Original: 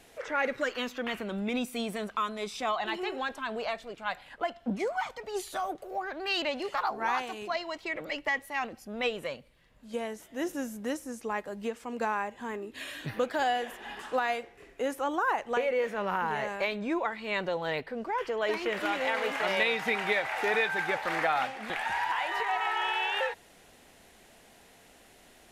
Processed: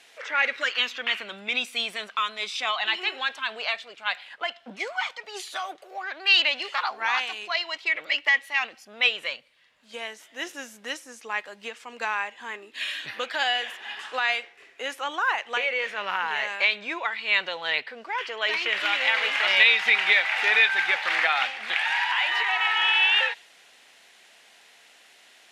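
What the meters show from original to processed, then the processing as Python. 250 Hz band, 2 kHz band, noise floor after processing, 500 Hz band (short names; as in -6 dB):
-11.0 dB, +9.5 dB, -55 dBFS, -5.0 dB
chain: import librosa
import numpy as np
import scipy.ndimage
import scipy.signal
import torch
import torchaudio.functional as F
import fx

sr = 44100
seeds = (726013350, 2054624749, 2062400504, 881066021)

y = fx.dynamic_eq(x, sr, hz=2900.0, q=0.87, threshold_db=-45.0, ratio=4.0, max_db=6)
y = fx.bandpass_q(y, sr, hz=3100.0, q=0.71)
y = F.gain(torch.from_numpy(y), 7.5).numpy()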